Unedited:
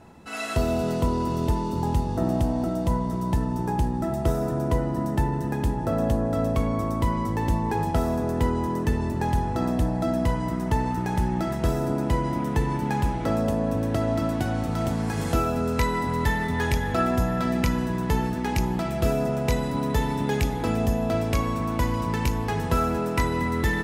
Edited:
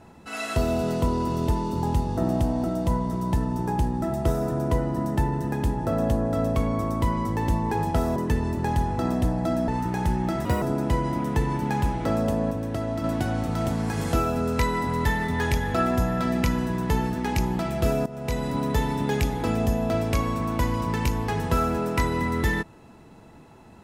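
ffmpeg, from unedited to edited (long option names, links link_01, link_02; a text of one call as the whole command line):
ffmpeg -i in.wav -filter_complex "[0:a]asplit=8[link_01][link_02][link_03][link_04][link_05][link_06][link_07][link_08];[link_01]atrim=end=8.162[link_09];[link_02]atrim=start=8.728:end=10.252[link_10];[link_03]atrim=start=10.798:end=11.574[link_11];[link_04]atrim=start=11.57:end=11.82,asetpts=PTS-STARTPTS,asetrate=64827,aresample=44100[link_12];[link_05]atrim=start=11.816:end=13.712[link_13];[link_06]atrim=start=13.708:end=14.242,asetpts=PTS-STARTPTS,volume=-4dB[link_14];[link_07]atrim=start=14.238:end=19.26,asetpts=PTS-STARTPTS,afade=type=out:start_time=5.018:duration=0.004:curve=hsin:silence=0.149624[link_15];[link_08]atrim=start=19.26,asetpts=PTS-STARTPTS,afade=type=in:duration=0.44:silence=0.149624[link_16];[link_09][link_10]acrossfade=duration=0.004:curve1=hsin:curve2=hsin[link_17];[link_17][link_11]acrossfade=duration=0.004:curve1=hsin:curve2=hsin[link_18];[link_18][link_12]acrossfade=duration=0.004:curve1=hsin:curve2=hsin[link_19];[link_19][link_13]acrossfade=duration=0.004:curve1=hsin:curve2=hsin[link_20];[link_20][link_14]acrossfade=duration=0.004:curve1=hsin:curve2=hsin[link_21];[link_15][link_16]concat=n=2:v=0:a=1[link_22];[link_21][link_22]acrossfade=duration=0.004:curve1=hsin:curve2=hsin" out.wav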